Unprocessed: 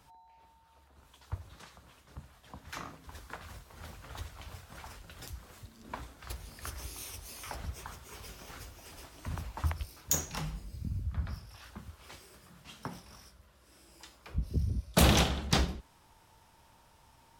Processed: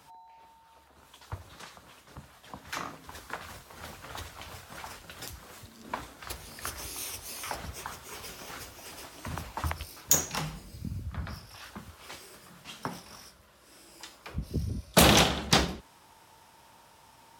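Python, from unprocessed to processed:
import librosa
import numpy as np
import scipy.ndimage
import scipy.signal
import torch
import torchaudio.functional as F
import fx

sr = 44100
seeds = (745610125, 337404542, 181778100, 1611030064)

y = fx.highpass(x, sr, hz=210.0, slope=6)
y = y * 10.0 ** (6.5 / 20.0)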